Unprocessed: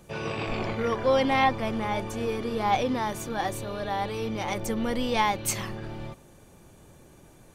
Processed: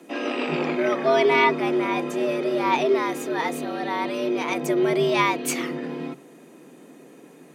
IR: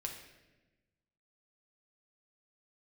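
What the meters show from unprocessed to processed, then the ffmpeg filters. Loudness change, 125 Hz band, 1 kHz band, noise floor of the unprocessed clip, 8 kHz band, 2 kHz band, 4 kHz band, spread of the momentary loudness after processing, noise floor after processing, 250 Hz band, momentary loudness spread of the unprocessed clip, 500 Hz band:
+4.5 dB, -2.5 dB, +2.0 dB, -54 dBFS, +0.5 dB, +6.0 dB, +2.5 dB, 10 LU, -49 dBFS, +5.0 dB, 10 LU, +6.5 dB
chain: -af "equalizer=f=125:t=o:w=1:g=6,equalizer=f=250:t=o:w=1:g=8,equalizer=f=2k:t=o:w=1:g=7,afreqshift=140"

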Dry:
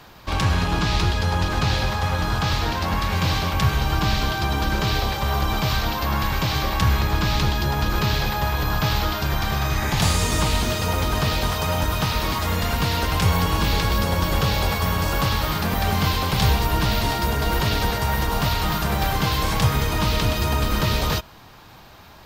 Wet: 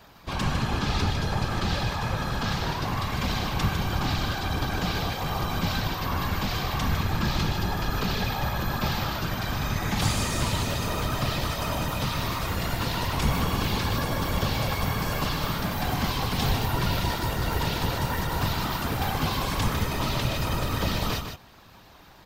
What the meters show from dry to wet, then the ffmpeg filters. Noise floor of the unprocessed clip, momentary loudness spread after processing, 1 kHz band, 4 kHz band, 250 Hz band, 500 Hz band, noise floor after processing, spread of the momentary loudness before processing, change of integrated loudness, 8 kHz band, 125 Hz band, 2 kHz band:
-45 dBFS, 3 LU, -5.5 dB, -5.5 dB, -3.5 dB, -5.0 dB, -50 dBFS, 3 LU, -5.5 dB, -5.5 dB, -5.5 dB, -5.5 dB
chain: -af "afftfilt=real='hypot(re,im)*cos(2*PI*random(0))':imag='hypot(re,im)*sin(2*PI*random(1))':win_size=512:overlap=0.75,aecho=1:1:153:0.422"

